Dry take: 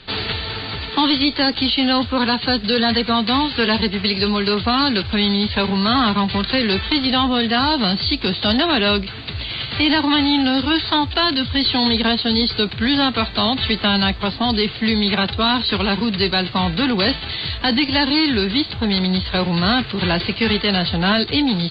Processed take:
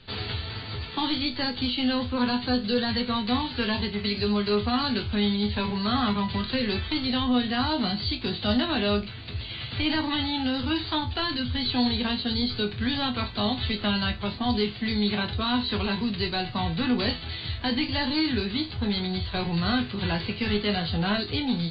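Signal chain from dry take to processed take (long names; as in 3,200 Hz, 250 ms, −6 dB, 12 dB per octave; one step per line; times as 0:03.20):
low-shelf EQ 190 Hz +8 dB
resonators tuned to a chord E2 major, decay 0.23 s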